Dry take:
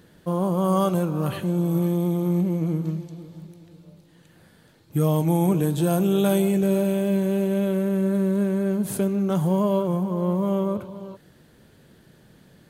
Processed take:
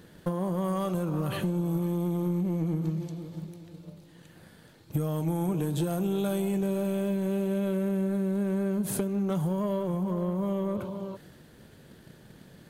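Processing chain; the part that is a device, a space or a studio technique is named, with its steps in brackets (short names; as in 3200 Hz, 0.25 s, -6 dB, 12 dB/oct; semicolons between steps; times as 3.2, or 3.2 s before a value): drum-bus smash (transient shaper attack +7 dB, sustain +3 dB; compressor 6:1, threshold -24 dBFS, peak gain reduction 11 dB; soft clip -19 dBFS, distortion -21 dB)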